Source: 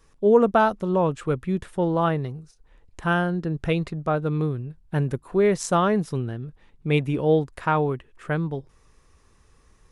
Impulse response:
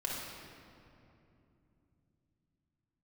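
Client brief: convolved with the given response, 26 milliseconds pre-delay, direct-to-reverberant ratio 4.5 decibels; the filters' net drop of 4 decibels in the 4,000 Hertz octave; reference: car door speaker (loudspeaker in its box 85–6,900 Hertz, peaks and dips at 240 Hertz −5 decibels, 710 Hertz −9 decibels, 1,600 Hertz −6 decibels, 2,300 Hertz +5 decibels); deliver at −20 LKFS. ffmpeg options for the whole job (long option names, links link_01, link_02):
-filter_complex "[0:a]equalizer=frequency=4000:width_type=o:gain=-6.5,asplit=2[link_01][link_02];[1:a]atrim=start_sample=2205,adelay=26[link_03];[link_02][link_03]afir=irnorm=-1:irlink=0,volume=-8.5dB[link_04];[link_01][link_04]amix=inputs=2:normalize=0,highpass=85,equalizer=frequency=240:width_type=q:width=4:gain=-5,equalizer=frequency=710:width_type=q:width=4:gain=-9,equalizer=frequency=1600:width_type=q:width=4:gain=-6,equalizer=frequency=2300:width_type=q:width=4:gain=5,lowpass=frequency=6900:width=0.5412,lowpass=frequency=6900:width=1.3066,volume=4dB"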